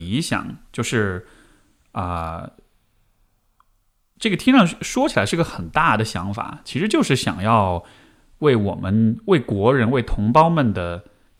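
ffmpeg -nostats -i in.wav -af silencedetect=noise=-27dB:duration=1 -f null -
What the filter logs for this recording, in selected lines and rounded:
silence_start: 2.48
silence_end: 4.22 | silence_duration: 1.74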